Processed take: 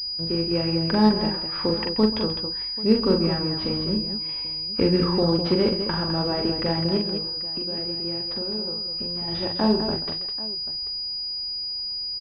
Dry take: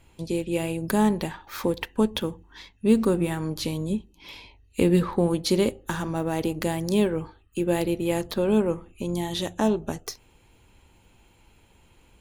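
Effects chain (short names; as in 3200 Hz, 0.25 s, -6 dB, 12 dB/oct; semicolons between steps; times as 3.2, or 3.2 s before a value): 6.97–9.28 compressor 6:1, threshold -33 dBFS, peak gain reduction 16 dB; tapped delay 42/133/206/788 ms -4/-13.5/-7.5/-17.5 dB; pulse-width modulation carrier 4900 Hz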